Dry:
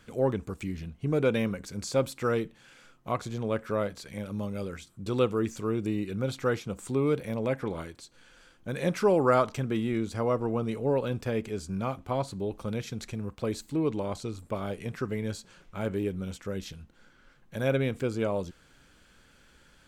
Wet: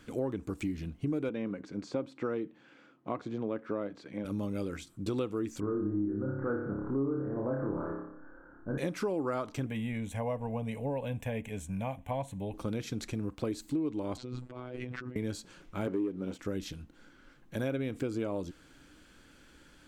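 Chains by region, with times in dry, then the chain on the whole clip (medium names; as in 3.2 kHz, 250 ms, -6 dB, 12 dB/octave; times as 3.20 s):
1.29–4.25 s: high-pass 170 Hz + tape spacing loss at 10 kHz 26 dB
5.60–8.78 s: steep low-pass 1.6 kHz 72 dB/octave + transient shaper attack -4 dB, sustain +5 dB + flutter echo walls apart 5 m, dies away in 0.69 s
9.66–12.54 s: static phaser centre 1.3 kHz, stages 6 + tape noise reduction on one side only encoder only
14.17–15.16 s: low-pass 3.3 kHz + compressor with a negative ratio -40 dBFS + robot voice 125 Hz
15.87–16.39 s: high-pass 380 Hz + tilt EQ -4 dB/octave + waveshaping leveller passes 1
whole clip: peaking EQ 300 Hz +11 dB 0.37 oct; compression 6:1, threshold -30 dBFS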